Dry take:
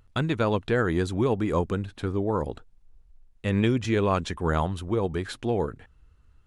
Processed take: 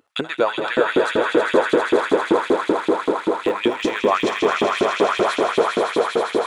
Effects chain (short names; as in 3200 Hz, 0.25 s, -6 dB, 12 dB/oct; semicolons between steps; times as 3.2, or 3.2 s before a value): 1.35–3.54 de-esser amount 95%; swelling echo 80 ms, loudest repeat 8, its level -6 dB; in parallel at -2.5 dB: level quantiser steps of 14 dB; on the sum: LFO high-pass saw up 5.2 Hz 280–3300 Hz